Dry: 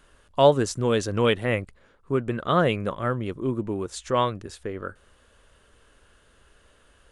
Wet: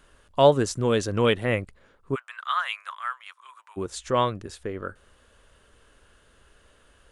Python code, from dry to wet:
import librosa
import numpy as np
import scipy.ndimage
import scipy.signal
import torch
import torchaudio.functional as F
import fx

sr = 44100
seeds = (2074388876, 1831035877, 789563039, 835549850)

y = fx.steep_highpass(x, sr, hz=1000.0, slope=36, at=(2.14, 3.76), fade=0.02)